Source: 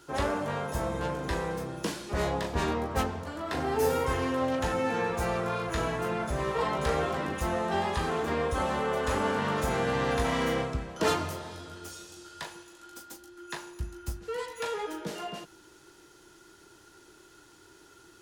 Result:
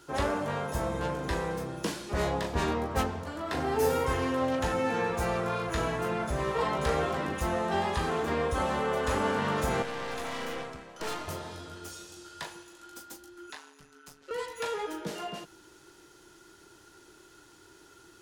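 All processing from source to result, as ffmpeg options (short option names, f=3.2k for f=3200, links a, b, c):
-filter_complex "[0:a]asettb=1/sr,asplit=3[a][b][c];[a]atrim=end=9.824[d];[b]atrim=start=9.82:end=11.28,asetpts=PTS-STARTPTS,afade=t=in:d=0.004:c=qsin,afade=t=out:st=1.456:d=0.004:c=qsin,highpass=f=390:p=1,aeval=exprs='(tanh(39.8*val(0)+0.75)-tanh(0.75))/39.8':c=same[e];[c]atrim=start=11.276[f];[d][e]acrossfade=d=0.004:c1=hsin:c2=qsin[g];[g][f]acrossfade=d=0.004:c1=qsin:c2=hsin,asettb=1/sr,asplit=3[h][i][j];[h]atrim=end=13.504[k];[i]atrim=start=13.5:end=14.31,asetpts=PTS-STARTPTS,afade=t=in:d=0.004:c=qsin,afade=t=out:st=0.806:d=0.004:c=qsin,highpass=f=1k:p=1,highshelf=f=10k:g=-10,aeval=exprs='val(0)*sin(2*PI*74*n/s)':c=same[l];[j]atrim=start=14.306[m];[k][l]acrossfade=d=0.004:c1=hsin:c2=qsin[n];[n][m]acrossfade=d=0.004:c1=qsin:c2=hsin"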